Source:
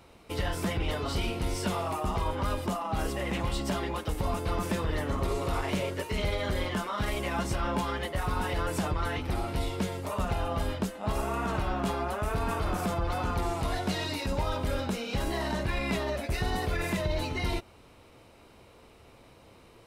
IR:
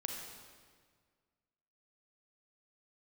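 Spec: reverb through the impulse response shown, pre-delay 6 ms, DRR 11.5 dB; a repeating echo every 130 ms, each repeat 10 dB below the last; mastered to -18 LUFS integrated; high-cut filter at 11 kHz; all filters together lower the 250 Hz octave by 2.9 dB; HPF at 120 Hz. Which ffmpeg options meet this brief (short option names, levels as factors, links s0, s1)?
-filter_complex "[0:a]highpass=120,lowpass=11000,equalizer=f=250:t=o:g=-3.5,aecho=1:1:130|260|390|520:0.316|0.101|0.0324|0.0104,asplit=2[s0][s1];[1:a]atrim=start_sample=2205,adelay=6[s2];[s1][s2]afir=irnorm=-1:irlink=0,volume=0.251[s3];[s0][s3]amix=inputs=2:normalize=0,volume=5.31"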